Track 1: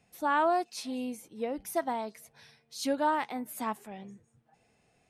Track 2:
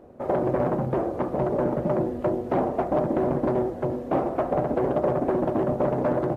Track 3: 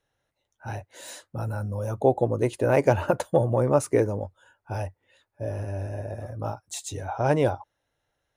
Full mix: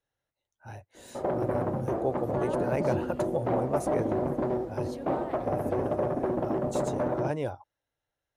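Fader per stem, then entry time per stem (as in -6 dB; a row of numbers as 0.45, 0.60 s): -15.0, -5.0, -9.5 dB; 2.10, 0.95, 0.00 s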